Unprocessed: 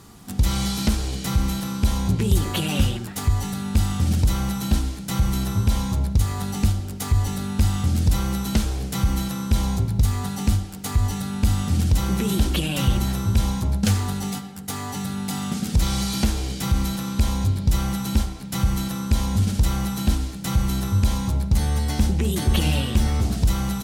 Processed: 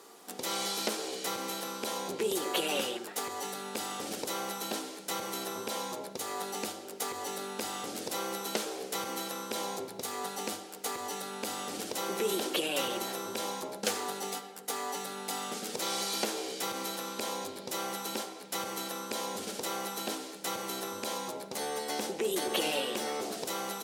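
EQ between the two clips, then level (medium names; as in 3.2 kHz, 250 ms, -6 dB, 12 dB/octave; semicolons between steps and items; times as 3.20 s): ladder high-pass 370 Hz, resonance 45%; +4.5 dB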